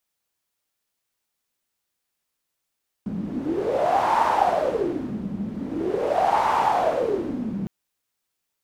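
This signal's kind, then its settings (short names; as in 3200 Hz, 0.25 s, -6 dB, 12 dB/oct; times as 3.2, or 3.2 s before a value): wind-like swept noise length 4.61 s, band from 200 Hz, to 910 Hz, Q 6.9, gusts 2, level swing 10 dB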